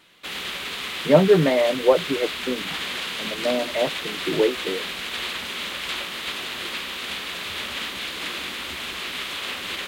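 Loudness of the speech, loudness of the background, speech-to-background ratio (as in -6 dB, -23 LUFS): -22.0 LUFS, -28.5 LUFS, 6.5 dB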